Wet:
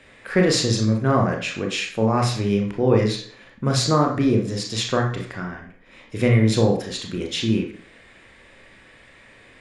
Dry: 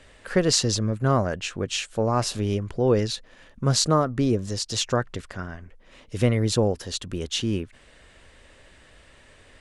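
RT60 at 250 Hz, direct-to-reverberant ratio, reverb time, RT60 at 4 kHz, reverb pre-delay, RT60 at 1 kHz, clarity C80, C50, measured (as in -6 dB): 0.60 s, 1.0 dB, 0.55 s, 0.45 s, 25 ms, 0.50 s, 11.0 dB, 6.5 dB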